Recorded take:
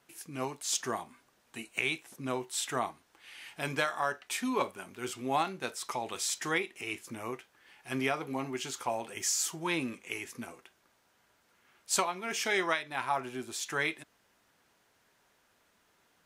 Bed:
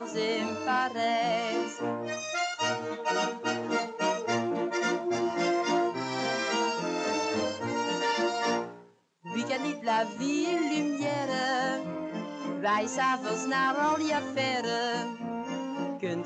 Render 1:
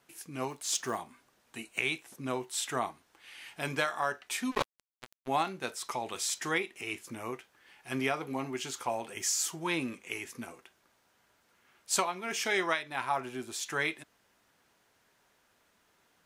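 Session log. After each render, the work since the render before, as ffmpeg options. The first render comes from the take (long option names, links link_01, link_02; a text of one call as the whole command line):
ffmpeg -i in.wav -filter_complex "[0:a]asplit=3[link_01][link_02][link_03];[link_01]afade=type=out:start_time=0.49:duration=0.02[link_04];[link_02]acrusher=bits=6:mode=log:mix=0:aa=0.000001,afade=type=in:start_time=0.49:duration=0.02,afade=type=out:start_time=0.96:duration=0.02[link_05];[link_03]afade=type=in:start_time=0.96:duration=0.02[link_06];[link_04][link_05][link_06]amix=inputs=3:normalize=0,asplit=3[link_07][link_08][link_09];[link_07]afade=type=out:start_time=4.5:duration=0.02[link_10];[link_08]acrusher=bits=3:mix=0:aa=0.5,afade=type=in:start_time=4.5:duration=0.02,afade=type=out:start_time=5.27:duration=0.02[link_11];[link_09]afade=type=in:start_time=5.27:duration=0.02[link_12];[link_10][link_11][link_12]amix=inputs=3:normalize=0" out.wav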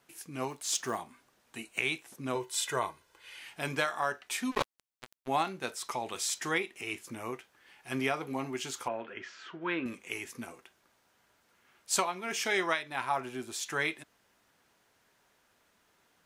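ffmpeg -i in.wav -filter_complex "[0:a]asettb=1/sr,asplit=3[link_01][link_02][link_03];[link_01]atrim=end=2.354[link_04];[link_02]atrim=start=2.35:end=3.39,asetpts=PTS-STARTPTS,afade=type=in:duration=0.004:curve=qsin,afade=type=out:start_time=1.036:duration=0.004:curve=qsin,aecho=1:1:2:0.65,atrim=end_sample=45864[link_05];[link_03]atrim=start=3.386[link_06];[link_04][link_05]acrossfade=duration=0.004:curve1=hsin:curve2=qsin[link_07];[link_07][link_06]acrossfade=duration=0.004:curve1=qsin:curve2=hsin,asettb=1/sr,asplit=3[link_08][link_09][link_10];[link_08]atrim=end=8.884[link_11];[link_09]atrim=start=8.88:end=9.86,asetpts=PTS-STARTPTS,afade=type=in:duration=0.004:curve=qsin,afade=type=out:start_time=0.976:duration=0.004:curve=qsin,highpass=130,equalizer=frequency=150:width_type=q:width=4:gain=-8,equalizer=frequency=810:width_type=q:width=4:gain=-9,equalizer=frequency=1500:width_type=q:width=4:gain=8,equalizer=frequency=2300:width_type=q:width=4:gain=-3,lowpass=frequency=2900:width=0.5412,lowpass=frequency=2900:width=1.3066[link_12];[link_10]atrim=start=9.856[link_13];[link_11][link_12]acrossfade=duration=0.004:curve1=hsin:curve2=qsin[link_14];[link_14][link_13]acrossfade=duration=0.004:curve1=qsin:curve2=hsin" out.wav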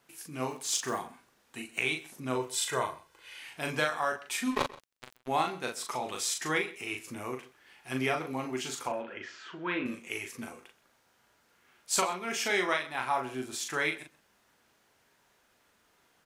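ffmpeg -i in.wav -filter_complex "[0:a]asplit=2[link_01][link_02];[link_02]adelay=39,volume=-4.5dB[link_03];[link_01][link_03]amix=inputs=2:normalize=0,asplit=2[link_04][link_05];[link_05]adelay=128.3,volume=-19dB,highshelf=frequency=4000:gain=-2.89[link_06];[link_04][link_06]amix=inputs=2:normalize=0" out.wav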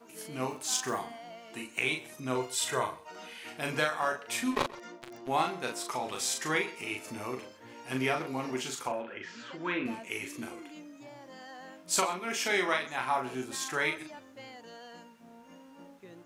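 ffmpeg -i in.wav -i bed.wav -filter_complex "[1:a]volume=-19dB[link_01];[0:a][link_01]amix=inputs=2:normalize=0" out.wav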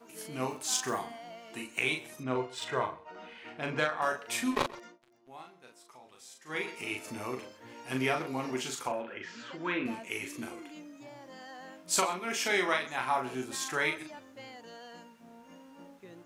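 ffmpeg -i in.wav -filter_complex "[0:a]asettb=1/sr,asplit=3[link_01][link_02][link_03];[link_01]atrim=end=2.234[link_04];[link_02]atrim=start=2.23:end=4.02,asetpts=PTS-STARTPTS,afade=type=in:duration=0.004:curve=qsin,afade=type=out:start_time=1.786:duration=0.004:curve=qsin,adynamicsmooth=sensitivity=1.5:basefreq=2900[link_05];[link_03]atrim=start=4.016[link_06];[link_04][link_05]acrossfade=duration=0.004:curve1=hsin:curve2=qsin[link_07];[link_07][link_06]acrossfade=duration=0.004:curve1=qsin:curve2=hsin,asplit=3[link_08][link_09][link_10];[link_08]atrim=end=4.99,asetpts=PTS-STARTPTS,afade=type=out:start_time=4.75:duration=0.24:silence=0.1[link_11];[link_09]atrim=start=4.99:end=6.46,asetpts=PTS-STARTPTS,volume=-20dB[link_12];[link_10]atrim=start=6.46,asetpts=PTS-STARTPTS,afade=type=in:duration=0.24:silence=0.1[link_13];[link_11][link_12][link_13]concat=n=3:v=0:a=1" out.wav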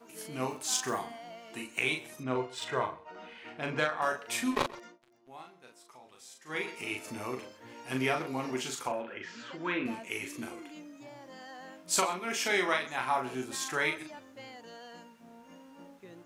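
ffmpeg -i in.wav -af anull out.wav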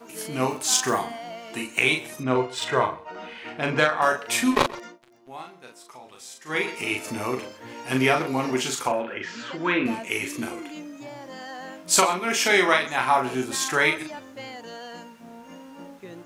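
ffmpeg -i in.wav -af "volume=9.5dB" out.wav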